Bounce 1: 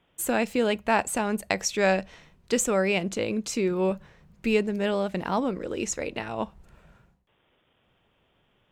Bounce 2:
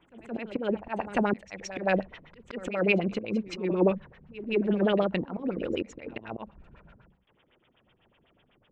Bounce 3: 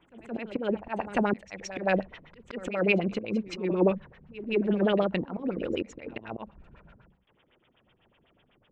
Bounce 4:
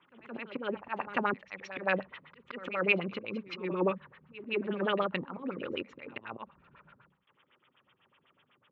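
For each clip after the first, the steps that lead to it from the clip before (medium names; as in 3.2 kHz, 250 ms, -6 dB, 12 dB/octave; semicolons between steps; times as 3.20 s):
LFO low-pass sine 8 Hz 230–3300 Hz; slow attack 220 ms; reverse echo 171 ms -15 dB
no audible change
cabinet simulation 180–3900 Hz, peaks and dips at 210 Hz -8 dB, 320 Hz -8 dB, 460 Hz -6 dB, 690 Hz -10 dB, 1.2 kHz +6 dB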